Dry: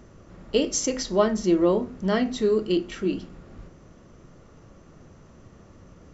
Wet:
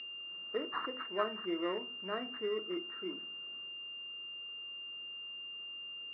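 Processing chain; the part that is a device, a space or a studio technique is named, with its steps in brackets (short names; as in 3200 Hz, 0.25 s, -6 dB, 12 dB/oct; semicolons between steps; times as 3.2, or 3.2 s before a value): toy sound module (decimation joined by straight lines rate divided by 6×; pulse-width modulation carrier 2800 Hz; speaker cabinet 550–4000 Hz, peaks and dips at 560 Hz -8 dB, 810 Hz -8 dB, 1300 Hz +6 dB, 1800 Hz +5 dB, 2800 Hz -7 dB); gain -6.5 dB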